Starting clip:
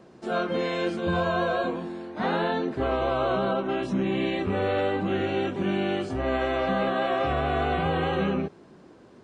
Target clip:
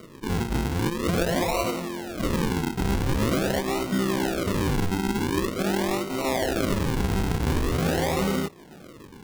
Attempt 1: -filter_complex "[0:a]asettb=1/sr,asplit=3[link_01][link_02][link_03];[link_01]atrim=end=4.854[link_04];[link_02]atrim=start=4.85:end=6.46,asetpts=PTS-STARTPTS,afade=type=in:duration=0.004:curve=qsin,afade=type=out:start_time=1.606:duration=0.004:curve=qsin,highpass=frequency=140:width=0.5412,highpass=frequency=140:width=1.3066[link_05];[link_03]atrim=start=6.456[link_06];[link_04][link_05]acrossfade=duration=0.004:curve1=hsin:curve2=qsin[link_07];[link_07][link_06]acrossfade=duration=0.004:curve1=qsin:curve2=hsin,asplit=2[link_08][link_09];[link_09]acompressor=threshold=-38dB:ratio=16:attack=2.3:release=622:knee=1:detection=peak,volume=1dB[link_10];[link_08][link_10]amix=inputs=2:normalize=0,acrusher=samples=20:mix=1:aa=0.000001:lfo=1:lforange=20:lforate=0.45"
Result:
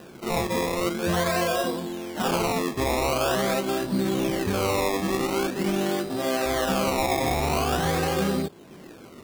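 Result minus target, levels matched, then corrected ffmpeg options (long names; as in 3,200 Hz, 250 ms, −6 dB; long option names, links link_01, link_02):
sample-and-hold swept by an LFO: distortion −11 dB
-filter_complex "[0:a]asettb=1/sr,asplit=3[link_01][link_02][link_03];[link_01]atrim=end=4.854[link_04];[link_02]atrim=start=4.85:end=6.46,asetpts=PTS-STARTPTS,afade=type=in:duration=0.004:curve=qsin,afade=type=out:start_time=1.606:duration=0.004:curve=qsin,highpass=frequency=140:width=0.5412,highpass=frequency=140:width=1.3066[link_05];[link_03]atrim=start=6.456[link_06];[link_04][link_05]acrossfade=duration=0.004:curve1=hsin:curve2=qsin[link_07];[link_07][link_06]acrossfade=duration=0.004:curve1=qsin:curve2=hsin,asplit=2[link_08][link_09];[link_09]acompressor=threshold=-38dB:ratio=16:attack=2.3:release=622:knee=1:detection=peak,volume=1dB[link_10];[link_08][link_10]amix=inputs=2:normalize=0,acrusher=samples=51:mix=1:aa=0.000001:lfo=1:lforange=51:lforate=0.45"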